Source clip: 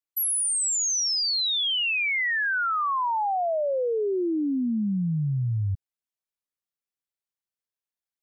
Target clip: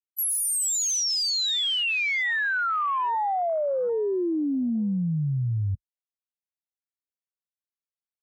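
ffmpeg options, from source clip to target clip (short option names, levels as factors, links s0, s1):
-af "afwtdn=0.0178"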